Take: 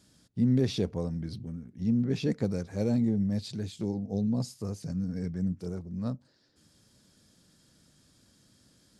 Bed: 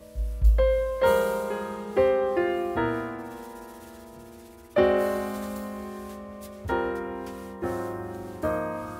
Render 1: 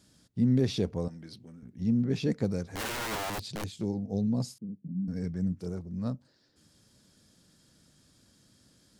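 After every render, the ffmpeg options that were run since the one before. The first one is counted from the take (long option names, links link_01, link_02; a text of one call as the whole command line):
ffmpeg -i in.wav -filter_complex "[0:a]asettb=1/sr,asplit=3[link_01][link_02][link_03];[link_01]atrim=end=1.084[link_04];[link_02]atrim=start=1.08:end=1.63,asetpts=PTS-STARTPTS,afade=type=in:duration=0.004:curve=qsin,afade=type=out:start_time=0.546:duration=0.004:curve=qsin,highpass=frequency=630:poles=1[link_05];[link_03]atrim=start=1.626[link_06];[link_04][link_05]acrossfade=duration=0.004:curve1=hsin:curve2=qsin[link_07];[link_07][link_06]acrossfade=duration=0.004:curve1=qsin:curve2=hsin,asettb=1/sr,asplit=3[link_08][link_09][link_10];[link_08]atrim=end=2.724[link_11];[link_09]atrim=start=2.72:end=3.64,asetpts=PTS-STARTPTS,afade=type=in:duration=0.004:curve=qsin,afade=type=out:start_time=0.916:duration=0.004:curve=qsin,aeval=exprs='(mod(29.9*val(0)+1,2)-1)/29.9':channel_layout=same[link_12];[link_10]atrim=start=3.636[link_13];[link_11][link_12]acrossfade=duration=0.004:curve1=hsin:curve2=qsin[link_14];[link_14][link_13]acrossfade=duration=0.004:curve1=qsin:curve2=hsin,asettb=1/sr,asplit=3[link_15][link_16][link_17];[link_15]atrim=end=4.584[link_18];[link_16]atrim=start=4.58:end=5.08,asetpts=PTS-STARTPTS,afade=type=in:duration=0.004:curve=qsin,afade=type=out:start_time=0.496:duration=0.004:curve=qsin,asuperpass=centerf=210:order=4:qfactor=1.9[link_19];[link_17]atrim=start=5.076[link_20];[link_18][link_19]acrossfade=duration=0.004:curve1=hsin:curve2=qsin[link_21];[link_21][link_20]acrossfade=duration=0.004:curve1=qsin:curve2=hsin" out.wav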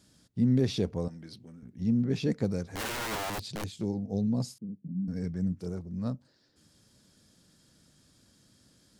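ffmpeg -i in.wav -af anull out.wav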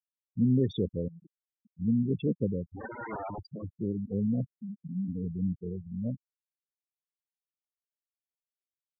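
ffmpeg -i in.wav -af "highpass=frequency=41:poles=1,afftfilt=real='re*gte(hypot(re,im),0.0501)':imag='im*gte(hypot(re,im),0.0501)':win_size=1024:overlap=0.75" out.wav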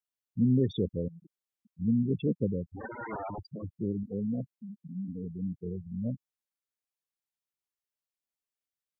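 ffmpeg -i in.wav -filter_complex "[0:a]asettb=1/sr,asplit=3[link_01][link_02][link_03];[link_01]atrim=end=4.034[link_04];[link_02]atrim=start=4.03:end=5.63,asetpts=PTS-STARTPTS,afade=type=in:duration=0.004:curve=qsin,afade=type=out:start_time=1.596:duration=0.004:curve=qsin,lowshelf=frequency=150:gain=-10[link_05];[link_03]atrim=start=5.626[link_06];[link_04][link_05]acrossfade=duration=0.004:curve1=hsin:curve2=qsin[link_07];[link_07][link_06]acrossfade=duration=0.004:curve1=qsin:curve2=hsin" out.wav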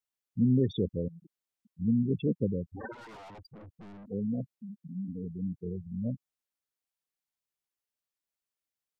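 ffmpeg -i in.wav -filter_complex "[0:a]asplit=3[link_01][link_02][link_03];[link_01]afade=type=out:start_time=2.92:duration=0.02[link_04];[link_02]aeval=exprs='(tanh(224*val(0)+0.15)-tanh(0.15))/224':channel_layout=same,afade=type=in:start_time=2.92:duration=0.02,afade=type=out:start_time=4.06:duration=0.02[link_05];[link_03]afade=type=in:start_time=4.06:duration=0.02[link_06];[link_04][link_05][link_06]amix=inputs=3:normalize=0" out.wav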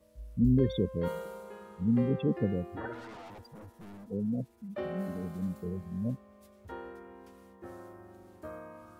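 ffmpeg -i in.wav -i bed.wav -filter_complex "[1:a]volume=-16.5dB[link_01];[0:a][link_01]amix=inputs=2:normalize=0" out.wav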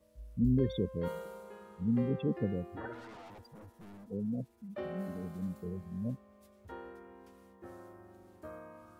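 ffmpeg -i in.wav -af "volume=-3.5dB" out.wav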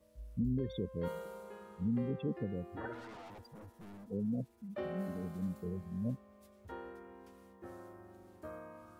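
ffmpeg -i in.wav -af "alimiter=level_in=2dB:limit=-24dB:level=0:latency=1:release=391,volume=-2dB" out.wav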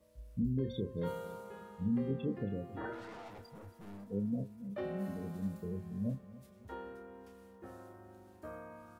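ffmpeg -i in.wav -filter_complex "[0:a]asplit=2[link_01][link_02];[link_02]adelay=30,volume=-8dB[link_03];[link_01][link_03]amix=inputs=2:normalize=0,aecho=1:1:274|548|822|1096:0.133|0.0573|0.0247|0.0106" out.wav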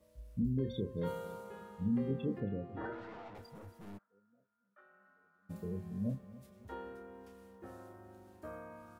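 ffmpeg -i in.wav -filter_complex "[0:a]asettb=1/sr,asplit=3[link_01][link_02][link_03];[link_01]atrim=end=2.404[link_04];[link_02]atrim=start=2.4:end=3.35,asetpts=PTS-STARTPTS,afade=type=in:duration=0.004:curve=qsin,afade=type=out:start_time=0.946:duration=0.004:curve=qsin,adynamicsmooth=sensitivity=4.5:basefreq=3600[link_05];[link_03]atrim=start=3.346[link_06];[link_04][link_05]acrossfade=duration=0.004:curve1=hsin:curve2=qsin[link_07];[link_07][link_06]acrossfade=duration=0.004:curve1=qsin:curve2=hsin,asplit=3[link_08][link_09][link_10];[link_08]afade=type=out:start_time=3.97:duration=0.02[link_11];[link_09]bandpass=frequency=1400:width_type=q:width=13,afade=type=in:start_time=3.97:duration=0.02,afade=type=out:start_time=5.49:duration=0.02[link_12];[link_10]afade=type=in:start_time=5.49:duration=0.02[link_13];[link_11][link_12][link_13]amix=inputs=3:normalize=0" out.wav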